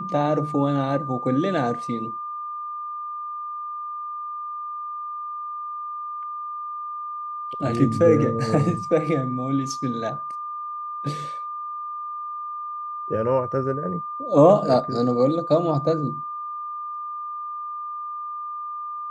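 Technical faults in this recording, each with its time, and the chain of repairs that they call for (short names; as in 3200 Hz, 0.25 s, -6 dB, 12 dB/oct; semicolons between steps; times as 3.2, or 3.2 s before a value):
tone 1200 Hz -29 dBFS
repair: notch 1200 Hz, Q 30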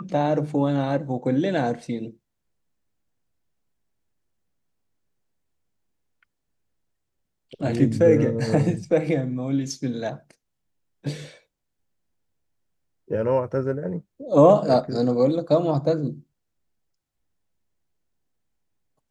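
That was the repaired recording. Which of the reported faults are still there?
none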